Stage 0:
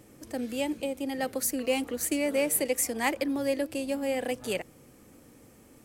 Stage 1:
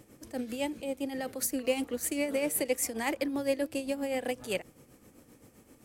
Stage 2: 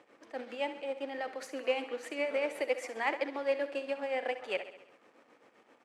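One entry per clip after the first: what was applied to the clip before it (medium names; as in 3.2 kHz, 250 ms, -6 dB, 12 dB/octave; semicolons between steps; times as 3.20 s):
tremolo 7.7 Hz, depth 58%
in parallel at -8 dB: companded quantiser 4-bit; on the sum: band-pass 600–2500 Hz; feedback delay 67 ms, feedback 58%, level -12.5 dB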